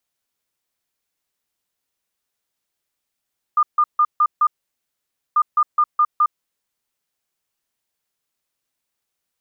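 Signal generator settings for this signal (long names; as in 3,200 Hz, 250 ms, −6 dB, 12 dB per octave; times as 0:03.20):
beeps in groups sine 1,210 Hz, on 0.06 s, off 0.15 s, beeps 5, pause 0.89 s, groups 2, −11.5 dBFS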